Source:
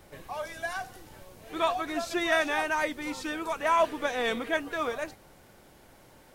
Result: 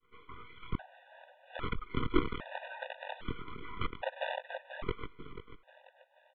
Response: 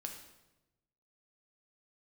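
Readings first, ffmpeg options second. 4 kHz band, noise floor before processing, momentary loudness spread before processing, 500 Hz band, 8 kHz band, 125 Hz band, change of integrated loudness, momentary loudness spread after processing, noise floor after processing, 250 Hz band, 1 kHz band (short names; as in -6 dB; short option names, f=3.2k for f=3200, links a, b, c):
-10.0 dB, -56 dBFS, 13 LU, -11.5 dB, under -35 dB, +8.5 dB, -10.0 dB, 21 LU, -68 dBFS, -5.0 dB, -12.5 dB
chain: -filter_complex "[0:a]aemphasis=mode=reproduction:type=bsi,afftfilt=real='hypot(re,im)*cos(2*PI*random(0))':imag='hypot(re,im)*sin(2*PI*random(1))':win_size=512:overlap=0.75,lowshelf=f=77:g=3.5,acrossover=split=560[a][b];[a]acrusher=bits=4:mix=0:aa=0.000001[c];[b]acompressor=threshold=-47dB:ratio=10[d];[c][d]amix=inputs=2:normalize=0,agate=range=-33dB:threshold=-60dB:ratio=3:detection=peak,flanger=delay=18:depth=6.4:speed=2.2,afreqshift=-23,aeval=exprs='max(val(0),0)':c=same,aecho=1:1:488|976|1464|1952|2440:0.237|0.111|0.0524|0.0246|0.0116,aresample=8000,aresample=44100,afftfilt=real='re*gt(sin(2*PI*0.62*pts/sr)*(1-2*mod(floor(b*sr/1024/490),2)),0)':imag='im*gt(sin(2*PI*0.62*pts/sr)*(1-2*mod(floor(b*sr/1024/490),2)),0)':win_size=1024:overlap=0.75,volume=12dB"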